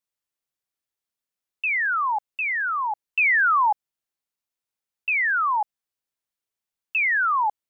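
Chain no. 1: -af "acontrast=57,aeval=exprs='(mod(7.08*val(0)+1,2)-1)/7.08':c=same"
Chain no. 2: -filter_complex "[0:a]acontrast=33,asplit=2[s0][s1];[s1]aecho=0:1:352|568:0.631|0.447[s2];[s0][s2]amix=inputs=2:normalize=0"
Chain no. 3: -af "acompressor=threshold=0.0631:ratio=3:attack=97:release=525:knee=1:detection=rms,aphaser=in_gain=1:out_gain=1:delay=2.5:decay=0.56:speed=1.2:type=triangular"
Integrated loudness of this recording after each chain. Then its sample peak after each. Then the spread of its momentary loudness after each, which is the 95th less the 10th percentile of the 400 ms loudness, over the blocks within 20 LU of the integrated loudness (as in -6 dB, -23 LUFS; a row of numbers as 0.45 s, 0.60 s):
-20.0 LUFS, -15.5 LUFS, -22.5 LUFS; -17.0 dBFS, -6.5 dBFS, -11.5 dBFS; 8 LU, 11 LU, 8 LU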